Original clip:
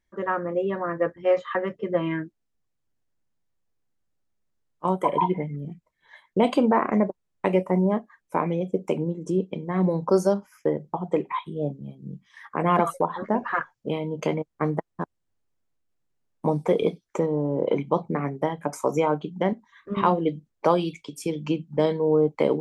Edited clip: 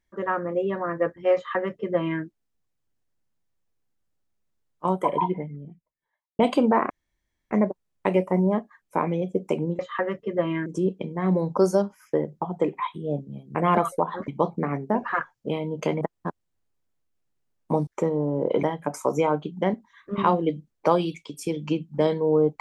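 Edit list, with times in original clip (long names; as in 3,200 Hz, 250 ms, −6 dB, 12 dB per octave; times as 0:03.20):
0:01.35–0:02.22: duplicate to 0:09.18
0:04.85–0:06.39: fade out and dull
0:06.90: splice in room tone 0.61 s
0:12.07–0:12.57: remove
0:14.41–0:14.75: remove
0:16.61–0:17.04: remove
0:17.80–0:18.42: move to 0:13.30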